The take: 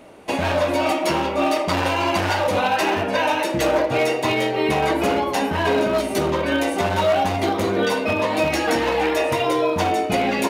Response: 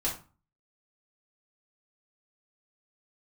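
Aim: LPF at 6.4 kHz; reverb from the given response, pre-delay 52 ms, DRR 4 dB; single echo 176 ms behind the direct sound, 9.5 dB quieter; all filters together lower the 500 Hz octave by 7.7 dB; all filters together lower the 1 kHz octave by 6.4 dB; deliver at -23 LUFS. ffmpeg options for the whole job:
-filter_complex "[0:a]lowpass=6400,equalizer=f=500:t=o:g=-8.5,equalizer=f=1000:t=o:g=-5,aecho=1:1:176:0.335,asplit=2[s0][s1];[1:a]atrim=start_sample=2205,adelay=52[s2];[s1][s2]afir=irnorm=-1:irlink=0,volume=0.316[s3];[s0][s3]amix=inputs=2:normalize=0,volume=0.944"

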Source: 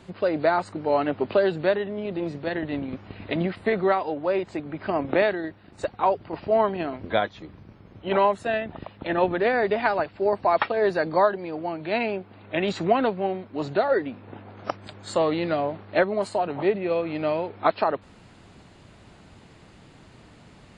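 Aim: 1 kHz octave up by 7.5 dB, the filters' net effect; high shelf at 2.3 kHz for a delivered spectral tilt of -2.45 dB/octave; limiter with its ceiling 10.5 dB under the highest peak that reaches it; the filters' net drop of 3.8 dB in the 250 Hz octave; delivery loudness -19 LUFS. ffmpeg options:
-af "equalizer=f=250:t=o:g=-7,equalizer=f=1000:t=o:g=9,highshelf=f=2300:g=6.5,volume=1.68,alimiter=limit=0.562:level=0:latency=1"

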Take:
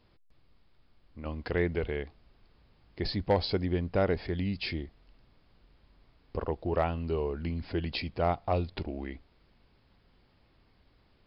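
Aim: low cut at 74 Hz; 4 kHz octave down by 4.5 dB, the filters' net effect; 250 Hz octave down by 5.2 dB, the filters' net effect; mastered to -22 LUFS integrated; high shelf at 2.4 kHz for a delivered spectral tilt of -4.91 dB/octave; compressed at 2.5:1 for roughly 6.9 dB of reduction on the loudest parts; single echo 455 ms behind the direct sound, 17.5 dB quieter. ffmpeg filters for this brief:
-af "highpass=74,equalizer=f=250:t=o:g=-8,highshelf=f=2400:g=3.5,equalizer=f=4000:t=o:g=-8.5,acompressor=threshold=0.0224:ratio=2.5,aecho=1:1:455:0.133,volume=6.68"

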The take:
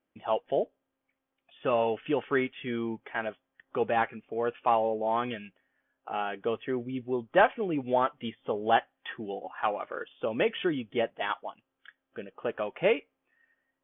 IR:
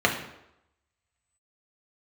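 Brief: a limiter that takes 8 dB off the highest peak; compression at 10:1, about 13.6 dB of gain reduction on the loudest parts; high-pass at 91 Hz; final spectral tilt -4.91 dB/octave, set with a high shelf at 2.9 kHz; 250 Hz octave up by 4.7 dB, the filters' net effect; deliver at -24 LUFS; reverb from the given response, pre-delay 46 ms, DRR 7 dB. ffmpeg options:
-filter_complex "[0:a]highpass=91,equalizer=f=250:t=o:g=6,highshelf=f=2900:g=-7.5,acompressor=threshold=0.0316:ratio=10,alimiter=level_in=1.33:limit=0.0631:level=0:latency=1,volume=0.75,asplit=2[s0][s1];[1:a]atrim=start_sample=2205,adelay=46[s2];[s1][s2]afir=irnorm=-1:irlink=0,volume=0.0668[s3];[s0][s3]amix=inputs=2:normalize=0,volume=4.73"

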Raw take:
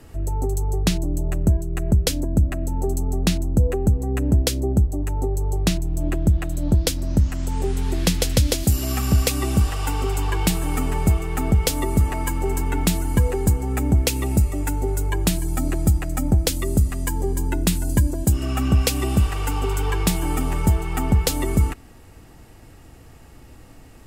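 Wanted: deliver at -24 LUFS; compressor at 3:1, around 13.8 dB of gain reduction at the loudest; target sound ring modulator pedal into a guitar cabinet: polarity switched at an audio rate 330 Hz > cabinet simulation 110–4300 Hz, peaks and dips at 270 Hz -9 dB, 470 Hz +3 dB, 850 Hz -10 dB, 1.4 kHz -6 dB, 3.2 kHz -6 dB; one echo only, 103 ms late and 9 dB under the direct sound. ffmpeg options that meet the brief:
-af "acompressor=threshold=0.0251:ratio=3,aecho=1:1:103:0.355,aeval=exprs='val(0)*sgn(sin(2*PI*330*n/s))':c=same,highpass=110,equalizer=f=270:t=q:w=4:g=-9,equalizer=f=470:t=q:w=4:g=3,equalizer=f=850:t=q:w=4:g=-10,equalizer=f=1400:t=q:w=4:g=-6,equalizer=f=3200:t=q:w=4:g=-6,lowpass=f=4300:w=0.5412,lowpass=f=4300:w=1.3066,volume=2.99"

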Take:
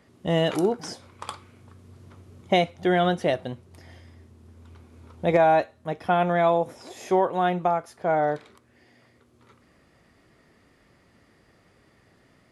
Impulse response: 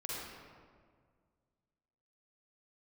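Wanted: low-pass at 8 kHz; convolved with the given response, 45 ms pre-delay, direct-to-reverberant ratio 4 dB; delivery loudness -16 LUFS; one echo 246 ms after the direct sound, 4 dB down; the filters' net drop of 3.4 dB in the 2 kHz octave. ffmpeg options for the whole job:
-filter_complex "[0:a]lowpass=8000,equalizer=f=2000:t=o:g=-4.5,aecho=1:1:246:0.631,asplit=2[s0][s1];[1:a]atrim=start_sample=2205,adelay=45[s2];[s1][s2]afir=irnorm=-1:irlink=0,volume=0.531[s3];[s0][s3]amix=inputs=2:normalize=0,volume=2"

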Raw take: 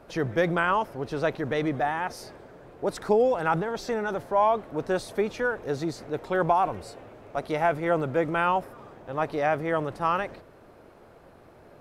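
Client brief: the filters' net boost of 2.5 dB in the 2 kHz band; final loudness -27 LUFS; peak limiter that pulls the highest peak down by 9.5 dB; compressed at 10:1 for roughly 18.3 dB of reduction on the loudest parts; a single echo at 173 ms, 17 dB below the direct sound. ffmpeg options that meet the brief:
-af "equalizer=f=2000:t=o:g=3.5,acompressor=threshold=0.0158:ratio=10,alimiter=level_in=2.82:limit=0.0631:level=0:latency=1,volume=0.355,aecho=1:1:173:0.141,volume=6.68"

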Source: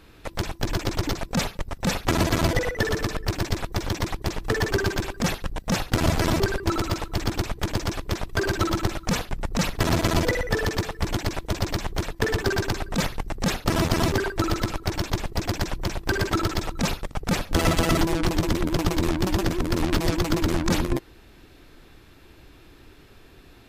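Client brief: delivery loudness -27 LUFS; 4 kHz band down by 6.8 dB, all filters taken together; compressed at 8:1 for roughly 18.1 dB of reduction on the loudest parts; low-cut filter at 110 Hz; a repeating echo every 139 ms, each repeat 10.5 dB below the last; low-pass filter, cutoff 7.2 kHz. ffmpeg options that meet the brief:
-af "highpass=110,lowpass=7200,equalizer=f=4000:t=o:g=-8.5,acompressor=threshold=0.0112:ratio=8,aecho=1:1:139|278|417:0.299|0.0896|0.0269,volume=6.31"

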